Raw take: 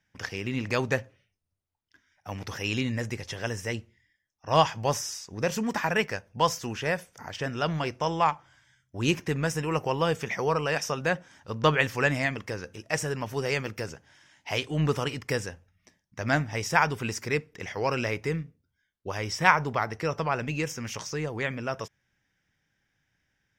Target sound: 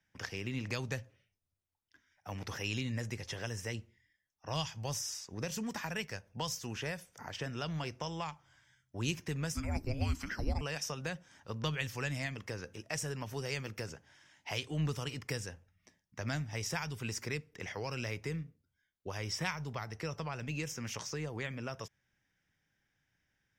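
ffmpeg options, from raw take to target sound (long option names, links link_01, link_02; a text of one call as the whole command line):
ffmpeg -i in.wav -filter_complex "[0:a]asettb=1/sr,asplit=3[link_01][link_02][link_03];[link_01]atrim=end=9.544[link_04];[link_02]atrim=start=9.54:end=10.61,asetpts=PTS-STARTPTS,afade=type=in:duration=0.004:curve=qsin,afade=type=out:start_time=1.066:duration=0.004:curve=qsin,afreqshift=-410[link_05];[link_03]atrim=start=10.606[link_06];[link_04][link_05]acrossfade=duration=0.004:curve1=hsin:curve2=qsin[link_07];[link_07][link_06]acrossfade=duration=0.004:curve1=qsin:curve2=hsin,acrossover=split=160|3000[link_08][link_09][link_10];[link_09]acompressor=threshold=-34dB:ratio=6[link_11];[link_08][link_11][link_10]amix=inputs=3:normalize=0,volume=-4.5dB" out.wav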